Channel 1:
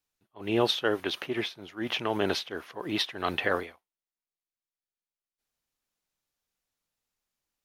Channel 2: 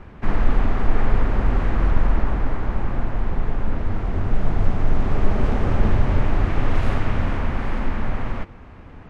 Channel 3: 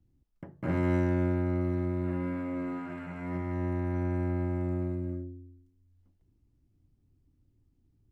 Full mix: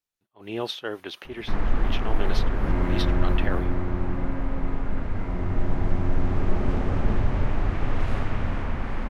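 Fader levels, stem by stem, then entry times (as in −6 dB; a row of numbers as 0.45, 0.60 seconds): −5.0, −5.0, −1.5 decibels; 0.00, 1.25, 2.00 seconds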